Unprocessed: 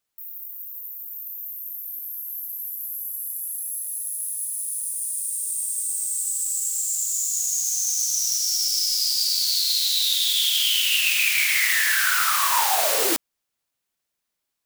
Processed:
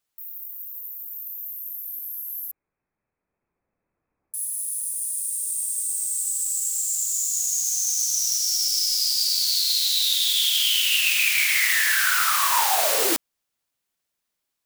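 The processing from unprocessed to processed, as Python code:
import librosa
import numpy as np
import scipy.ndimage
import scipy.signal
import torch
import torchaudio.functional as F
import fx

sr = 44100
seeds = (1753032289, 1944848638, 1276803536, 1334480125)

y = fx.freq_invert(x, sr, carrier_hz=2600, at=(2.51, 4.34))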